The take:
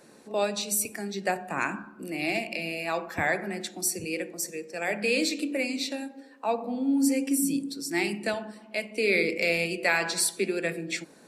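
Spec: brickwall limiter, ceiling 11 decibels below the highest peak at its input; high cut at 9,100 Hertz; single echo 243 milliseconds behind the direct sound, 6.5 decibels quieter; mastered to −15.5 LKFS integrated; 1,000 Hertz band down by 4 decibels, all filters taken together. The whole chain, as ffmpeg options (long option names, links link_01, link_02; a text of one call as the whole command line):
ffmpeg -i in.wav -af "lowpass=9100,equalizer=frequency=1000:width_type=o:gain=-6,alimiter=limit=-23dB:level=0:latency=1,aecho=1:1:243:0.473,volume=16.5dB" out.wav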